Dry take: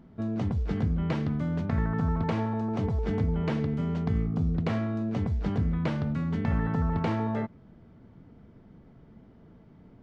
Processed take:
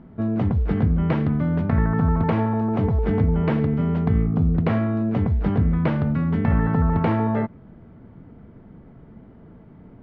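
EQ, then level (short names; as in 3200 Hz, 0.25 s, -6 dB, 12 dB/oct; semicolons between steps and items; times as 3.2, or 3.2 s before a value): LPF 2400 Hz 12 dB/oct; +7.5 dB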